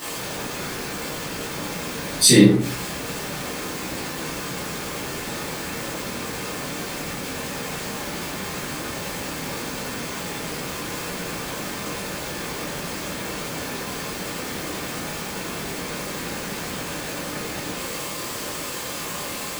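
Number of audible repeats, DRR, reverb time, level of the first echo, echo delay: no echo audible, −9.0 dB, 0.50 s, no echo audible, no echo audible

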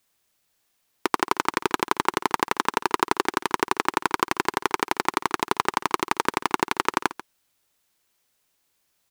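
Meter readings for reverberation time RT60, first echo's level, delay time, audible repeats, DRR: no reverb audible, −16.5 dB, 139 ms, 1, no reverb audible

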